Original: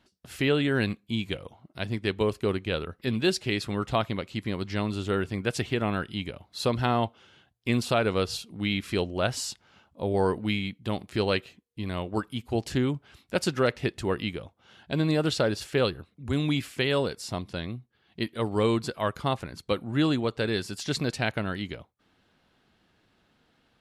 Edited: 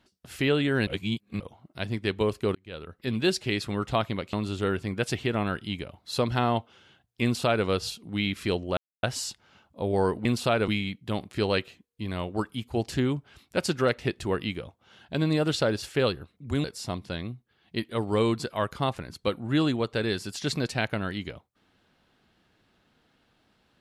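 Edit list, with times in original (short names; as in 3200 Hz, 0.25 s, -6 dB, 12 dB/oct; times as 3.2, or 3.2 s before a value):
0.87–1.4 reverse
2.55–3.19 fade in
4.33–4.8 cut
7.7–8.13 copy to 10.46
9.24 insert silence 0.26 s
16.42–17.08 cut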